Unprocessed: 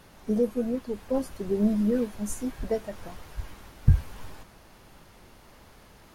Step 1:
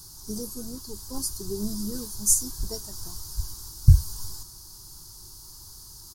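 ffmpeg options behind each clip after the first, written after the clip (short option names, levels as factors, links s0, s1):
-af "firequalizer=gain_entry='entry(120,0);entry(230,-16);entry(350,-6);entry(540,-26);entry(930,-7);entry(1500,-14);entry(2200,-27);entry(4700,13)':delay=0.05:min_phase=1,volume=1.78"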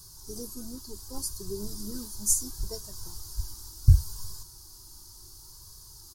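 -af "flanger=delay=1.8:depth=1.5:regen=-34:speed=0.7:shape=sinusoidal"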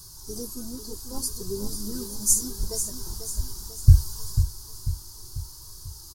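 -af "aecho=1:1:493|986|1479|1972|2465|2958:0.355|0.177|0.0887|0.0444|0.0222|0.0111,volume=1.58"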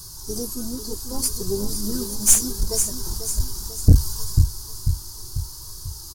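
-af "aeval=exprs='(tanh(5.01*val(0)+0.45)-tanh(0.45))/5.01':c=same,volume=2.51"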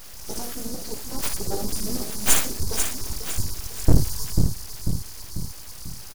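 -af "aecho=1:1:58|79:0.355|0.316,aeval=exprs='abs(val(0))':c=same,volume=0.841"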